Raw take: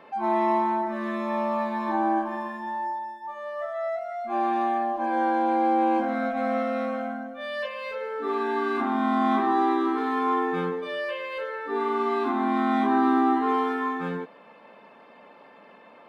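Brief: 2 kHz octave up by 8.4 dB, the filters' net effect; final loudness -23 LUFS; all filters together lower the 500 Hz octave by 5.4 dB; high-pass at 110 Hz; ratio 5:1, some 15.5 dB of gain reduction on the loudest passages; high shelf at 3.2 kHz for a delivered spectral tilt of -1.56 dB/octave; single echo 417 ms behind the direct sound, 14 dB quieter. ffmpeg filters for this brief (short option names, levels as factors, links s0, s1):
-af "highpass=110,equalizer=f=500:t=o:g=-8.5,equalizer=f=2000:t=o:g=8.5,highshelf=f=3200:g=8,acompressor=threshold=0.0126:ratio=5,aecho=1:1:417:0.2,volume=6.31"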